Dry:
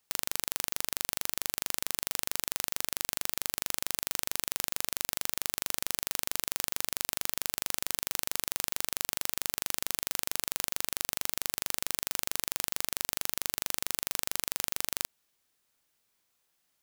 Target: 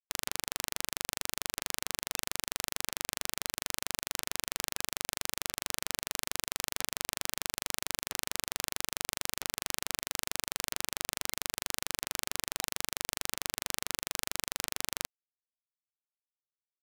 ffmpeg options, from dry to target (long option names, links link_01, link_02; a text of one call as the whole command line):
ffmpeg -i in.wav -af "afftfilt=real='re*gte(hypot(re,im),0.00501)':imag='im*gte(hypot(re,im),0.00501)':win_size=1024:overlap=0.75,adynamicsmooth=sensitivity=7:basefreq=2200,volume=4.5dB" out.wav